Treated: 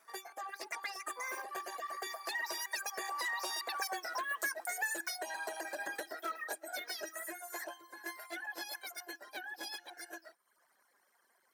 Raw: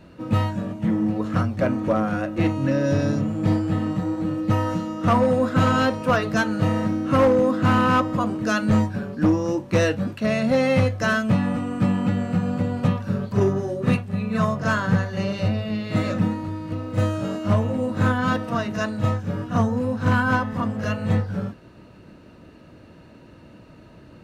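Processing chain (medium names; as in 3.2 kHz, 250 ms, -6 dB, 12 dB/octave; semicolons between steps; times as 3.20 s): Doppler pass-by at 8.42 s, 18 m/s, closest 5.3 m; reverb removal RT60 1.2 s; frequency weighting D; compression 12:1, threshold -46 dBFS, peak gain reduction 27.5 dB; tempo 0.6×; small resonant body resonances 450/3600 Hz, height 10 dB, ringing for 25 ms; wide varispeed 3.5×; trim +9 dB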